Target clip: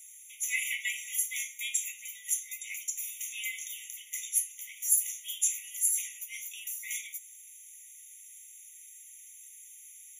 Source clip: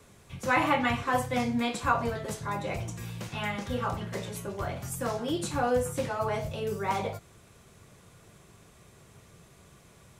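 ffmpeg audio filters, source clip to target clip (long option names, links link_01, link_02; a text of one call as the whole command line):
ffmpeg -i in.wav -af "aexciter=amount=6.1:drive=7.1:freq=6100,afftfilt=real='re*eq(mod(floor(b*sr/1024/1900),2),1)':imag='im*eq(mod(floor(b*sr/1024/1900),2),1)':win_size=1024:overlap=0.75" out.wav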